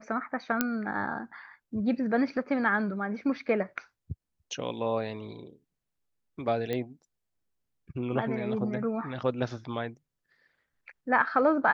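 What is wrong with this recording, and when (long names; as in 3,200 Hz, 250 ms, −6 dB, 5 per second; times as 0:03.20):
0:00.61: click −9 dBFS
0:06.73: click −19 dBFS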